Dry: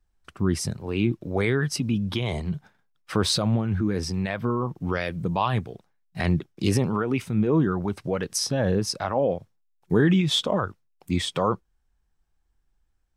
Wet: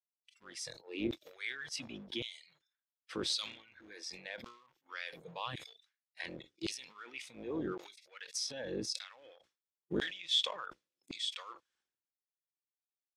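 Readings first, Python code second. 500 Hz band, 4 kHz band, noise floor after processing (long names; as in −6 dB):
−18.0 dB, −6.5 dB, below −85 dBFS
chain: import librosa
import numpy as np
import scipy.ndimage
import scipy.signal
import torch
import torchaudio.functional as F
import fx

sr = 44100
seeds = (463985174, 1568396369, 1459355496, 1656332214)

y = fx.octave_divider(x, sr, octaves=2, level_db=2.0)
y = fx.noise_reduce_blind(y, sr, reduce_db=22)
y = fx.tone_stack(y, sr, knobs='6-0-2')
y = fx.leveller(y, sr, passes=1)
y = fx.small_body(y, sr, hz=(350.0, 510.0, 3400.0), ring_ms=25, db=7)
y = fx.filter_lfo_highpass(y, sr, shape='saw_down', hz=0.9, low_hz=280.0, high_hz=4300.0, q=0.97)
y = fx.air_absorb(y, sr, metres=71.0)
y = fx.sustainer(y, sr, db_per_s=98.0)
y = y * librosa.db_to_amplitude(4.5)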